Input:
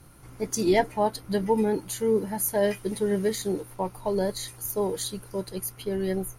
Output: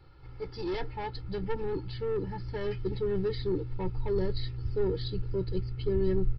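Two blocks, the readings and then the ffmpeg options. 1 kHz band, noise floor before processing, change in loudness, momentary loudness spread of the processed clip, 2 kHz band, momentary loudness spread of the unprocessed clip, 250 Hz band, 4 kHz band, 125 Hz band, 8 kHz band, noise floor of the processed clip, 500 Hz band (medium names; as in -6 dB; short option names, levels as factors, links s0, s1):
-11.0 dB, -49 dBFS, -6.0 dB, 7 LU, -9.0 dB, 10 LU, -7.0 dB, -6.5 dB, +3.0 dB, under -40 dB, -45 dBFS, -5.5 dB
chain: -af "aresample=11025,asoftclip=type=tanh:threshold=0.0562,aresample=44100,asubboost=boost=11.5:cutoff=210,aecho=1:1:2.3:0.86,volume=0.447"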